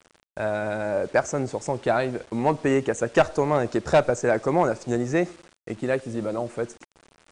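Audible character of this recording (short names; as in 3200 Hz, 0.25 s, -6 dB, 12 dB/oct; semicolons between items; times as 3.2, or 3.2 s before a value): a quantiser's noise floor 8-bit, dither none; MP3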